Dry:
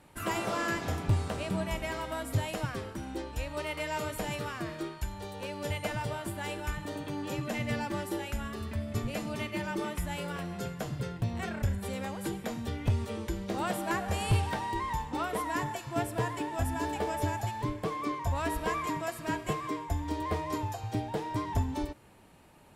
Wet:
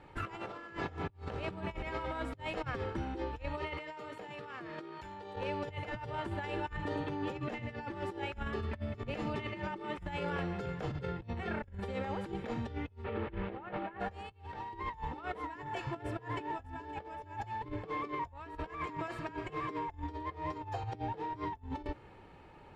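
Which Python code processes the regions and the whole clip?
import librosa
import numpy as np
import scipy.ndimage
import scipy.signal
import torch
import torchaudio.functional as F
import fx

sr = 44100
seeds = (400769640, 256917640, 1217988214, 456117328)

y = fx.chain(x, sr, fx.highpass(hz=180.0, slope=12),
    fx.env_flatten(amount_pct=100), at=(3.78, 5.36))
y = fx.chain(y, sr, fx.delta_mod(bps=32000, step_db=-35.5),
    fx.lowpass(hz=2800.0, slope=24), at=(13.04, 14.0))
y = y + 0.38 * np.pad(y, (int(2.3 * sr / 1000.0), 0))[:len(y)]
y = fx.over_compress(y, sr, threshold_db=-37.0, ratio=-0.5)
y = scipy.signal.sosfilt(scipy.signal.butter(2, 2900.0, 'lowpass', fs=sr, output='sos'), y)
y = y * 10.0 ** (-2.0 / 20.0)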